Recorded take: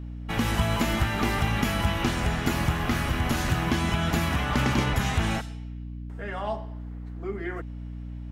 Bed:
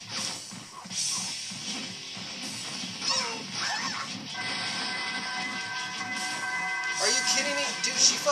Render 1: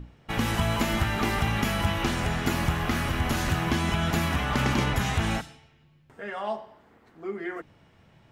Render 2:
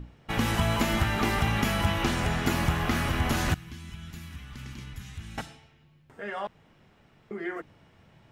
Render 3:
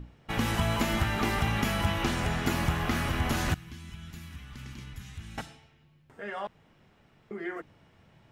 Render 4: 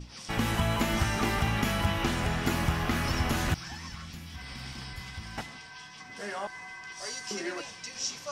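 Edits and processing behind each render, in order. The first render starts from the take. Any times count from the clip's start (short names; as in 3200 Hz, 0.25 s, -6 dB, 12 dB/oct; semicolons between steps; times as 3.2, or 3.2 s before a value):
notches 60/120/180/240/300 Hz
3.54–5.38 passive tone stack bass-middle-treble 6-0-2; 6.47–7.31 room tone
gain -2 dB
add bed -13 dB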